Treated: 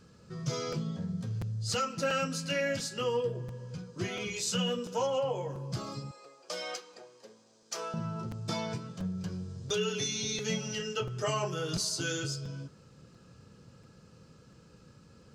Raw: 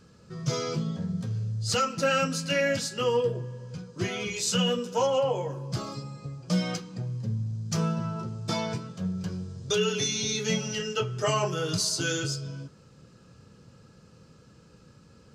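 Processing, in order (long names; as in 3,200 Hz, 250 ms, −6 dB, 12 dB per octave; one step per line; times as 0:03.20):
0:06.11–0:07.94: high-pass filter 420 Hz 24 dB per octave
in parallel at −1 dB: downward compressor, threshold −34 dBFS, peak gain reduction 12.5 dB
on the sum: regular buffer underruns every 0.69 s, samples 256, repeat, from 0:00.72
level −7.5 dB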